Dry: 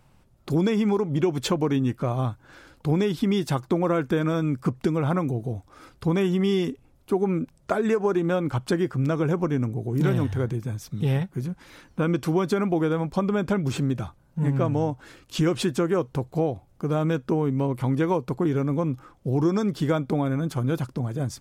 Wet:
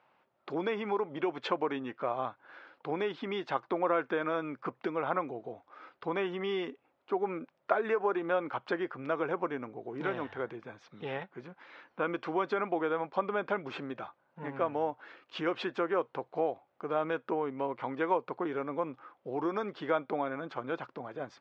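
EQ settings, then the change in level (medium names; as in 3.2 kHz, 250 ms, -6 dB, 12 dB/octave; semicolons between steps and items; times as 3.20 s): band-pass 590–2900 Hz; distance through air 150 m; 0.0 dB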